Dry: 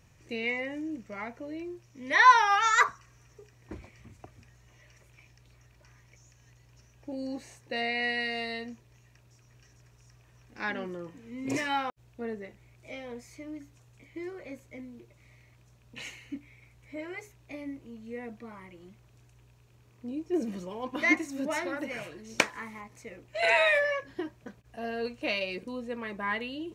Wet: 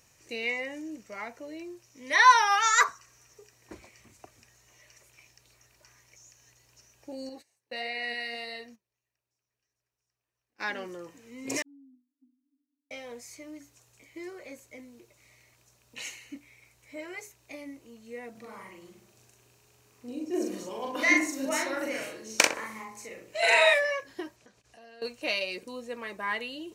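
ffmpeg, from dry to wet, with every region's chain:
-filter_complex "[0:a]asettb=1/sr,asplit=3[a][b][c];[a]atrim=end=7.294[d];[b]atrim=start=7.29:end=10.61,asetpts=PTS-STARTPTS,afade=t=in:d=0.004:c=qsin,afade=t=out:st=3.316:d=0.004:c=qsin,agate=range=-20dB:threshold=-47dB:ratio=16:release=100:detection=peak,equalizer=f=6.8k:t=o:w=0.64:g=-6.5,flanger=delay=1.3:depth=4.5:regen=70:speed=1.6:shape=triangular[e];[c]atrim=start=10.606[f];[d][e]acrossfade=d=0.004:c1=hsin:c2=qsin[g];[g][f]acrossfade=d=0.004:c1=qsin:c2=hsin,asettb=1/sr,asplit=3[h][i][j];[h]atrim=end=11.624[k];[i]atrim=start=11.62:end=12.91,asetpts=PTS-STARTPTS,afade=t=in:d=0.004:c=qsin,afade=t=out:st=1.286:d=0.004:c=qsin,asuperpass=centerf=270:order=20:qfactor=5.5,acompressor=threshold=-52dB:ratio=2.5:attack=3.2:release=140:knee=1:detection=peak[l];[j]atrim=start=12.906[m];[k][l]acrossfade=d=0.004:c1=hsin:c2=qsin[n];[n][m]acrossfade=d=0.004:c1=qsin:c2=hsin,asettb=1/sr,asplit=3[o][p][q];[o]atrim=end=18.314[r];[p]atrim=start=18.31:end=23.74,asetpts=PTS-STARTPTS,afade=t=in:d=0.004:c=qsin,afade=t=out:st=5.426:d=0.004:c=qsin,asplit=2[s][t];[t]adelay=41,volume=-2.5dB[u];[s][u]amix=inputs=2:normalize=0,atrim=end_sample=239463,asplit=2[v][w];[w]adelay=64,lowpass=f=1.1k:p=1,volume=-4.5dB,asplit=2[x][y];[y]adelay=64,lowpass=f=1.1k:p=1,volume=0.54,asplit=2[z][aa];[aa]adelay=64,lowpass=f=1.1k:p=1,volume=0.54,asplit=2[ab][ac];[ac]adelay=64,lowpass=f=1.1k:p=1,volume=0.54,asplit=2[ad][ae];[ae]adelay=64,lowpass=f=1.1k:p=1,volume=0.54,asplit=2[af][ag];[ag]adelay=64,lowpass=f=1.1k:p=1,volume=0.54,asplit=2[ah][ai];[ai]adelay=64,lowpass=f=1.1k:p=1,volume=0.54[aj];[v][x][z][ab][ad][af][ah][aj]amix=inputs=8:normalize=0,atrim=end_sample=239463[ak];[q]atrim=start=23.736[al];[r][ak]acrossfade=d=0.004:c1=hsin:c2=qsin[am];[am][al]acrossfade=d=0.004:c1=qsin:c2=hsin,asettb=1/sr,asplit=3[an][ao][ap];[an]atrim=end=24.364[aq];[ao]atrim=start=24.36:end=25.02,asetpts=PTS-STARTPTS,afade=t=in:d=0.004:c=qsin,afade=t=out:st=0.656:d=0.004:c=qsin,lowpass=6.2k,acompressor=threshold=-53dB:ratio=3:attack=3.2:release=140:knee=1:detection=peak,highshelf=f=4.3k:g=8[ar];[ap]atrim=start=25.016[as];[aq][ar]acrossfade=d=0.004:c1=hsin:c2=qsin[at];[at][as]acrossfade=d=0.004:c1=qsin:c2=hsin,bass=f=250:g=-11,treble=f=4k:g=9,bandreject=f=3.4k:w=22"

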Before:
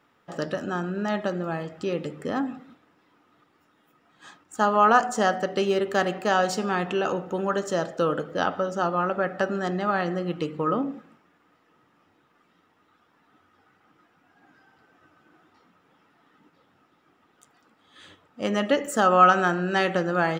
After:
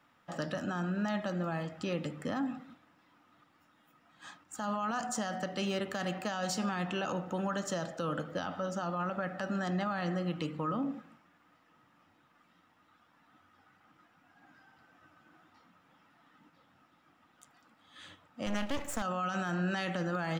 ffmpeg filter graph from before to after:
-filter_complex "[0:a]asettb=1/sr,asplit=3[a][b][c];[a]atrim=end=18.464[d];[b]atrim=start=18.46:end=19.02,asetpts=PTS-STARTPTS,afade=t=in:d=0.004:c=qsin,afade=t=out:st=0.556:d=0.004:c=qsin,highpass=42,aeval=exprs='max(val(0),0)':c=same[e];[c]atrim=start=19.016[f];[d][e]acrossfade=d=0.004:c1=hsin:c2=qsin[g];[g][f]acrossfade=d=0.004:c1=qsin:c2=hsin,equalizer=f=410:t=o:w=0.38:g=-12.5,acrossover=split=270|3000[h][i][j];[i]acompressor=threshold=-31dB:ratio=2[k];[h][k][j]amix=inputs=3:normalize=0,alimiter=limit=-23dB:level=0:latency=1:release=25,volume=-2dB"

